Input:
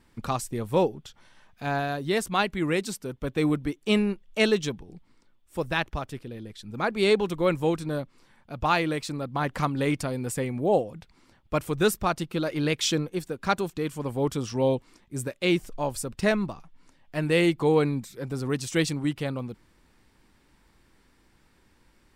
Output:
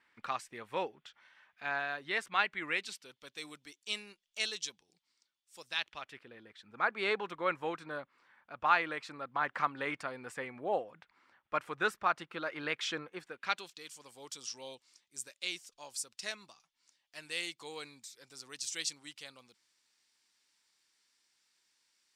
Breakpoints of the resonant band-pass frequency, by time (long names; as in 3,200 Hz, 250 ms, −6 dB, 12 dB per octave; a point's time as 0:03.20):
resonant band-pass, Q 1.4
0:02.64 1,900 Hz
0:03.36 5,600 Hz
0:05.65 5,600 Hz
0:06.27 1,500 Hz
0:13.22 1,500 Hz
0:13.86 5,800 Hz